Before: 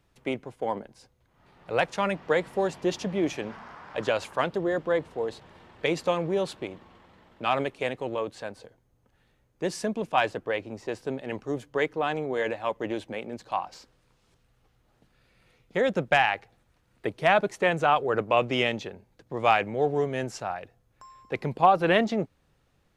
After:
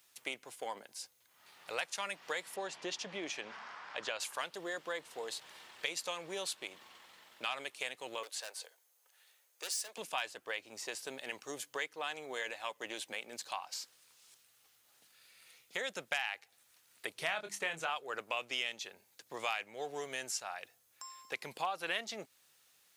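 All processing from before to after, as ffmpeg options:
ffmpeg -i in.wav -filter_complex "[0:a]asettb=1/sr,asplit=3[link_01][link_02][link_03];[link_01]atrim=end=2.564[link_04];[link_02]atrim=start=2.56:end=4.2,asetpts=PTS-STARTPTS,afade=type=in:duration=0.004:curve=qsin,afade=type=out:start_time=1.636:duration=0.004:curve=qsin,lowpass=7100,highshelf=frequency=4300:gain=-10[link_05];[link_03]atrim=start=4.196[link_06];[link_04][link_05]acrossfade=duration=0.004:curve1=hsin:curve2=qsin[link_07];[link_07][link_06]acrossfade=duration=0.004:curve1=qsin:curve2=hsin,asettb=1/sr,asplit=3[link_08][link_09][link_10];[link_08]atrim=end=8.234[link_11];[link_09]atrim=start=8.23:end=9.98,asetpts=PTS-STARTPTS,afade=type=in:duration=0.004:curve=qsin,afade=type=out:start_time=1.746:duration=0.004:curve=qsin,highpass=frequency=430:width=0.5412,highpass=frequency=430:width=1.3066,asoftclip=type=hard:threshold=-34.5dB[link_12];[link_10]atrim=start=9.976[link_13];[link_11][link_12]acrossfade=duration=0.004:curve1=hsin:curve2=qsin[link_14];[link_14][link_13]acrossfade=duration=0.004:curve1=qsin:curve2=hsin,asettb=1/sr,asplit=3[link_15][link_16][link_17];[link_15]atrim=end=17.144[link_18];[link_16]atrim=start=17.14:end=17.9,asetpts=PTS-STARTPTS,afade=type=in:duration=0.004:curve=qsin,afade=type=out:start_time=0.756:duration=0.004:curve=qsin,bass=frequency=250:gain=8,treble=frequency=4000:gain=-4,bandreject=frequency=50:width_type=h:width=6,bandreject=frequency=100:width_type=h:width=6,bandreject=frequency=150:width_type=h:width=6,bandreject=frequency=200:width_type=h:width=6,bandreject=frequency=250:width_type=h:width=6,bandreject=frequency=300:width_type=h:width=6,bandreject=frequency=350:width_type=h:width=6,asplit=2[link_19][link_20];[link_20]adelay=25,volume=-8dB[link_21];[link_19][link_21]amix=inputs=2:normalize=0,atrim=end_sample=33516[link_22];[link_17]atrim=start=17.896[link_23];[link_18][link_22]acrossfade=duration=0.004:curve1=hsin:curve2=qsin[link_24];[link_24][link_23]acrossfade=duration=0.004:curve1=qsin:curve2=hsin,aderivative,acompressor=threshold=-52dB:ratio=2.5,volume=13dB" out.wav

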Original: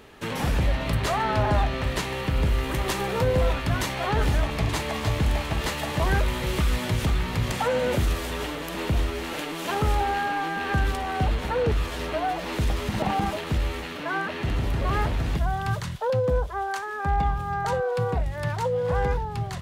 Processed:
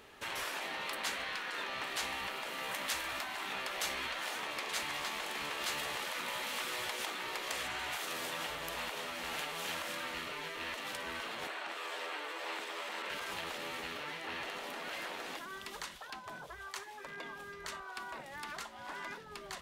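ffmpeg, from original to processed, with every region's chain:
ffmpeg -i in.wav -filter_complex "[0:a]asettb=1/sr,asplit=3[link_01][link_02][link_03];[link_01]atrim=end=11.474[link_04];[link_02]atrim=start=11.47:end=13.1,asetpts=PTS-STARTPTS,afade=type=in:duration=0.004:curve=qsin,afade=type=out:start_time=1.626:duration=0.004:curve=qsin,highpass=frequency=390:width=0.5412,highpass=frequency=390:width=1.3066,equalizer=frequency=7900:width=6.9:gain=6,acrossover=split=4100[link_05][link_06];[link_06]acompressor=threshold=-50dB:ratio=4:attack=1:release=60[link_07];[link_05][link_07]amix=inputs=2:normalize=0[link_08];[link_03]atrim=start=13.096[link_09];[link_04][link_08]acrossfade=duration=0.004:curve1=hsin:curve2=qsin[link_10];[link_10][link_09]acrossfade=duration=0.004:curve1=qsin:curve2=hsin,afftfilt=real='re*lt(hypot(re,im),0.112)':imag='im*lt(hypot(re,im),0.112)':win_size=1024:overlap=0.75,lowshelf=frequency=380:gain=-10.5,volume=-4.5dB" out.wav

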